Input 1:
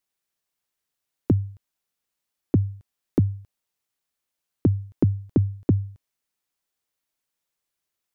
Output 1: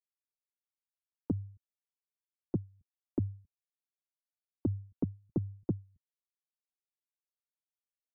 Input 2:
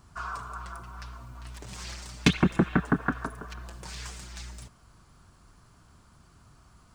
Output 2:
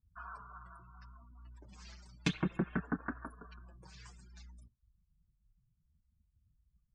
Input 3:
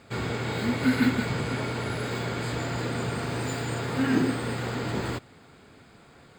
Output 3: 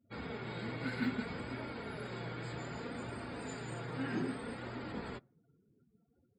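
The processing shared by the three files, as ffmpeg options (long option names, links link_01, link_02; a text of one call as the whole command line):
ffmpeg -i in.wav -af "afftdn=noise_reduction=35:noise_floor=-44,flanger=delay=3:depth=3.5:regen=-30:speed=0.63:shape=triangular,volume=-8dB" out.wav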